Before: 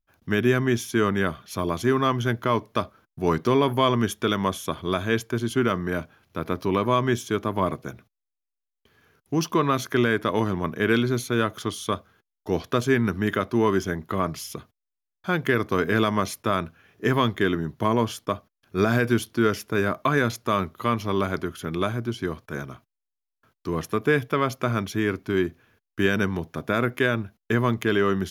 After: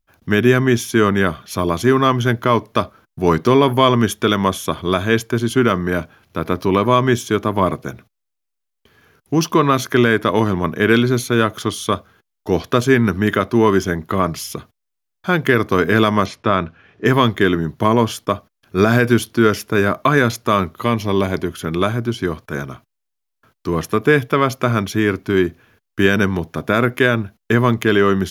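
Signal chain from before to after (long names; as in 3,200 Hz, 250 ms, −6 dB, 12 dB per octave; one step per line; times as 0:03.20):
0:16.26–0:17.06: low-pass filter 3,900 Hz 12 dB per octave
0:20.83–0:21.54: parametric band 1,300 Hz −11.5 dB 0.29 octaves
level +7.5 dB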